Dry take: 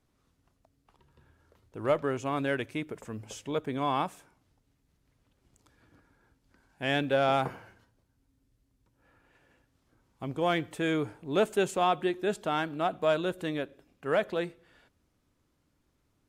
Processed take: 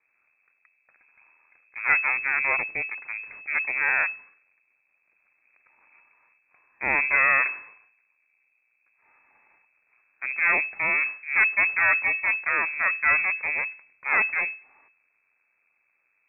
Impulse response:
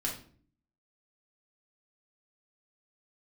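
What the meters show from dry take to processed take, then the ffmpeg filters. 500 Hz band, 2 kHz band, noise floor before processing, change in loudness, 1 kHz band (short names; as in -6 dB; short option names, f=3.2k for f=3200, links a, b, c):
-11.5 dB, +16.5 dB, -74 dBFS, +8.0 dB, +0.5 dB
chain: -af "highpass=88,aeval=exprs='max(val(0),0)':c=same,lowpass=f=2.2k:t=q:w=0.5098,lowpass=f=2.2k:t=q:w=0.6013,lowpass=f=2.2k:t=q:w=0.9,lowpass=f=2.2k:t=q:w=2.563,afreqshift=-2600,volume=7.5dB"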